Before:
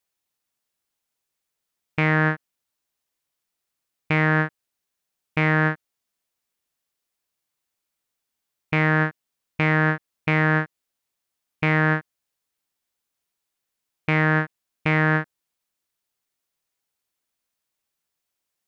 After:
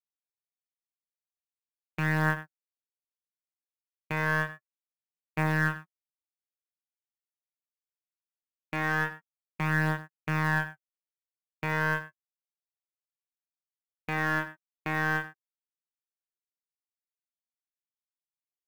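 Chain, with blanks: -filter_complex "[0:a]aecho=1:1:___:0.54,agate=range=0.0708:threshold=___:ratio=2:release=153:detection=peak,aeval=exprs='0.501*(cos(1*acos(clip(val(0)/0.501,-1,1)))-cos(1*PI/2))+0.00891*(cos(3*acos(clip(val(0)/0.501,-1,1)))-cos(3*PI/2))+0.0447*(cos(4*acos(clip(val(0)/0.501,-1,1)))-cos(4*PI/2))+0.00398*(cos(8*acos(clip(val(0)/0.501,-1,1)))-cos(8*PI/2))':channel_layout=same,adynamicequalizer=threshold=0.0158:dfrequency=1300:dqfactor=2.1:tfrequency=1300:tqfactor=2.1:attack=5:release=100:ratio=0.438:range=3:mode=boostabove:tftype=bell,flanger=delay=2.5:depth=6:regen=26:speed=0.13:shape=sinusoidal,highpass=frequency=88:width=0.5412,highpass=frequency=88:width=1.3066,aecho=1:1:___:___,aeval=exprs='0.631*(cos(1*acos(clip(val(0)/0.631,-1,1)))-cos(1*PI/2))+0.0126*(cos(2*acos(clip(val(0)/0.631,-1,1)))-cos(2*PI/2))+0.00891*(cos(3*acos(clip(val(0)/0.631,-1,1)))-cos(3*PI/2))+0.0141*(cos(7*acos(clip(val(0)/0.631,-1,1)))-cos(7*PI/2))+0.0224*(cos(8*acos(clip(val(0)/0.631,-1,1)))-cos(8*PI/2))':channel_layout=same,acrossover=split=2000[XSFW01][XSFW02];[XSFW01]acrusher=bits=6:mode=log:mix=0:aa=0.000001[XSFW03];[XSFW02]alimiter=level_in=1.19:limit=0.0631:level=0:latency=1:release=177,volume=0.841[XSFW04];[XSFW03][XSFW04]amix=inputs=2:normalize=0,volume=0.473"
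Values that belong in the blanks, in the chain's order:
5.3, 0.0398, 92, 0.211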